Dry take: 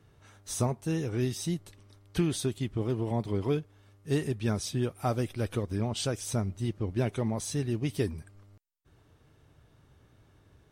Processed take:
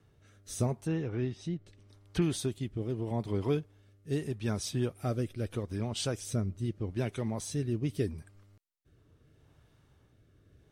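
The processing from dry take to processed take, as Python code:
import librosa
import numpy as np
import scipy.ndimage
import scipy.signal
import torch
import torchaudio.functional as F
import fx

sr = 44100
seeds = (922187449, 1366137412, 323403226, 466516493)

y = fx.rotary(x, sr, hz=0.8)
y = fx.env_lowpass_down(y, sr, base_hz=2700.0, full_db=-30.5, at=(0.83, 2.22))
y = y * 10.0 ** (-1.0 / 20.0)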